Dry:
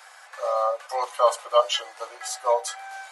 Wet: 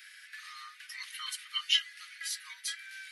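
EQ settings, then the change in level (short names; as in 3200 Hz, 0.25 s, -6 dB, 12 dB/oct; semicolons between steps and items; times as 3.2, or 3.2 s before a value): steep high-pass 1700 Hz 48 dB/oct; bell 7200 Hz -11.5 dB 0.65 oct; +1.5 dB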